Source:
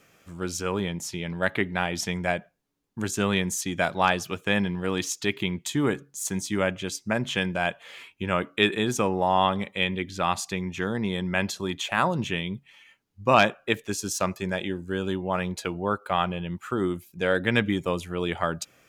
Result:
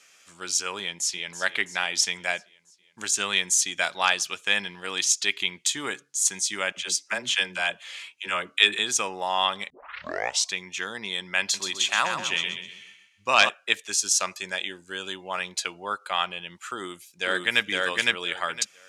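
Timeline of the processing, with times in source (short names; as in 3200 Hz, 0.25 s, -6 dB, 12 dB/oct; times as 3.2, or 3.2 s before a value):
0.82–1.38 echo throw 0.33 s, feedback 60%, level -13 dB
6.72–8.79 dispersion lows, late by 62 ms, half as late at 370 Hz
9.7 tape start 0.84 s
11.41–13.49 feedback echo 0.127 s, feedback 38%, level -6.5 dB
16.75–17.64 echo throw 0.51 s, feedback 20%, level -0.5 dB
whole clip: weighting filter ITU-R 468; gain -2.5 dB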